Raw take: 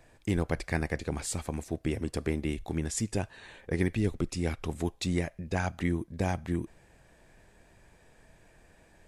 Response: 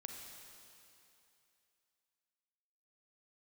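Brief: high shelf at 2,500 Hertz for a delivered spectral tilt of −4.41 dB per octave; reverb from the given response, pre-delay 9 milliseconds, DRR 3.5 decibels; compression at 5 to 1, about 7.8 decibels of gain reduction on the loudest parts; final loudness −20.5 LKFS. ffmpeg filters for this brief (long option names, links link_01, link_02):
-filter_complex "[0:a]highshelf=frequency=2500:gain=6,acompressor=threshold=-32dB:ratio=5,asplit=2[link_01][link_02];[1:a]atrim=start_sample=2205,adelay=9[link_03];[link_02][link_03]afir=irnorm=-1:irlink=0,volume=0dB[link_04];[link_01][link_04]amix=inputs=2:normalize=0,volume=15.5dB"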